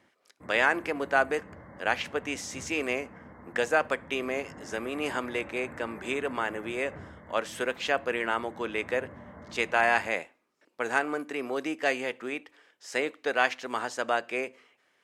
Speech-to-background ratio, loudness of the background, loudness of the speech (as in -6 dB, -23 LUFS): 18.0 dB, -48.0 LUFS, -30.0 LUFS